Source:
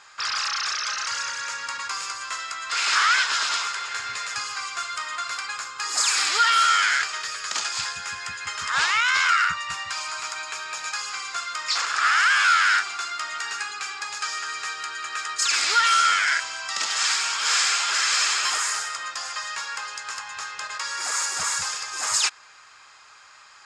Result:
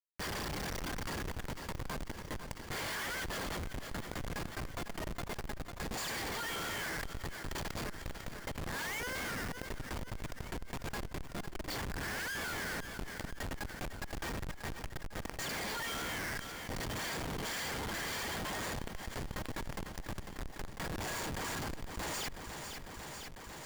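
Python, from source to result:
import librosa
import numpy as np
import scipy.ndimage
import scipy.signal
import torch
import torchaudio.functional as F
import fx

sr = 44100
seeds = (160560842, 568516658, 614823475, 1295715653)

p1 = fx.highpass(x, sr, hz=140.0, slope=6)
p2 = fx.dereverb_blind(p1, sr, rt60_s=1.0)
p3 = scipy.signal.lfilter(np.full(34, 1.0 / 34), 1.0, p2)
p4 = fx.peak_eq(p3, sr, hz=340.0, db=-10.5, octaves=0.27)
p5 = fx.rider(p4, sr, range_db=5, speed_s=2.0)
p6 = p4 + F.gain(torch.from_numpy(p5), -3.0).numpy()
p7 = np.sign(p6) * np.maximum(np.abs(p6) - 10.0 ** (-53.0 / 20.0), 0.0)
p8 = np.diff(p7, prepend=0.0)
p9 = fx.schmitt(p8, sr, flips_db=-49.0)
p10 = p9 + fx.echo_feedback(p9, sr, ms=499, feedback_pct=55, wet_db=-20.5, dry=0)
p11 = fx.env_flatten(p10, sr, amount_pct=70)
y = F.gain(torch.from_numpy(p11), 13.5).numpy()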